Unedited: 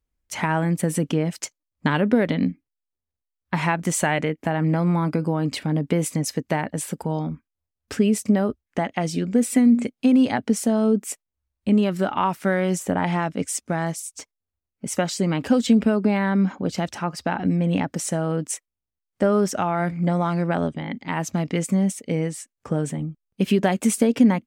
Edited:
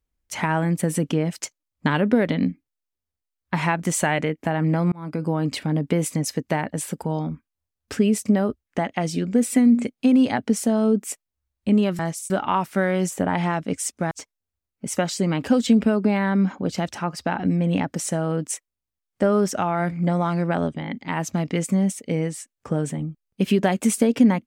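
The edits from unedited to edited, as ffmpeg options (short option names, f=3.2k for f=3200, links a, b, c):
-filter_complex "[0:a]asplit=5[a][b][c][d][e];[a]atrim=end=4.92,asetpts=PTS-STARTPTS,afade=t=out:st=4.916:d=0.004:c=hsin[f];[b]atrim=start=4.92:end=11.992,asetpts=PTS-STARTPTS,afade=t=in:d=0.39[g];[c]atrim=start=13.798:end=14.112[h];[d]atrim=start=11.988:end=13.802[i];[e]atrim=start=14.108[j];[f][g]concat=n=2:v=0:a=1[k];[k][h]acrossfade=d=0.004:c1=hsin:c2=hsin[l];[l][i]acrossfade=d=0.004:c1=hsin:c2=hsin[m];[m][j]acrossfade=d=0.004:c1=hsin:c2=hsin"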